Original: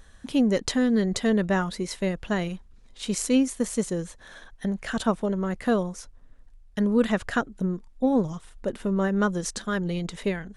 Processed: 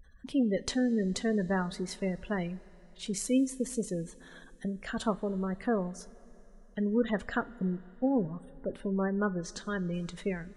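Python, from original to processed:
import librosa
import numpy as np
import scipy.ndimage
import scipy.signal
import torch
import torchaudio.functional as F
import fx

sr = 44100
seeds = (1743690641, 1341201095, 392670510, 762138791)

y = fx.spec_gate(x, sr, threshold_db=-25, keep='strong')
y = fx.rev_double_slope(y, sr, seeds[0], early_s=0.24, late_s=3.6, knee_db=-18, drr_db=13.5)
y = fx.env_lowpass_down(y, sr, base_hz=2900.0, full_db=-21.5, at=(8.73, 9.94))
y = F.gain(torch.from_numpy(y), -6.0).numpy()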